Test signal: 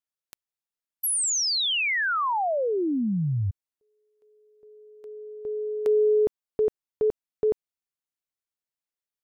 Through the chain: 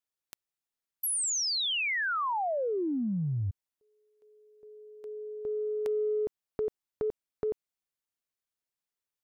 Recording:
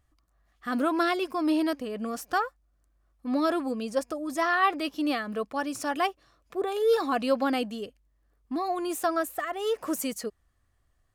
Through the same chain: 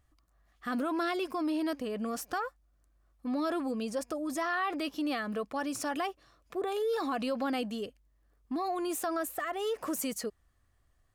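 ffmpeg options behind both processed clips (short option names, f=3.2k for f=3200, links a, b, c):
-af "acompressor=threshold=-29dB:ratio=5:attack=3:release=61:knee=6:detection=peak"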